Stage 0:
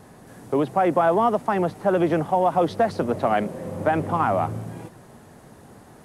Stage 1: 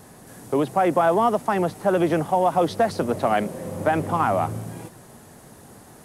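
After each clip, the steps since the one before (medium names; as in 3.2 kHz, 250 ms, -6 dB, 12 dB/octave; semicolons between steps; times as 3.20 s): treble shelf 4.9 kHz +10 dB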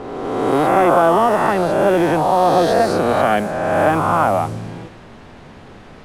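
reverse spectral sustain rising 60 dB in 1.89 s; added noise pink -44 dBFS; level-controlled noise filter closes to 2.7 kHz, open at -13 dBFS; trim +2 dB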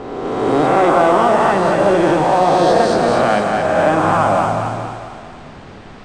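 elliptic low-pass 8.7 kHz, stop band 40 dB; in parallel at -7.5 dB: overload inside the chain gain 18.5 dB; on the sum: two-band feedback delay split 570 Hz, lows 97 ms, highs 225 ms, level -4 dB; trim -1 dB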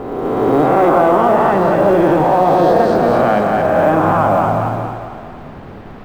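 low-pass 1.2 kHz 6 dB/octave; in parallel at -2 dB: peak limiter -11 dBFS, peak gain reduction 7.5 dB; on the sum: companded quantiser 8-bit; trim -1 dB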